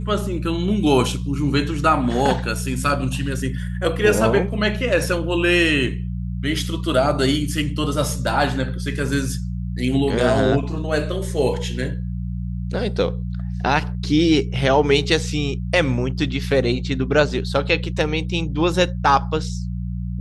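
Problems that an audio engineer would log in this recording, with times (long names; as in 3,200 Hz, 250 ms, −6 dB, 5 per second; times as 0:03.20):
mains hum 60 Hz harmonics 3 −26 dBFS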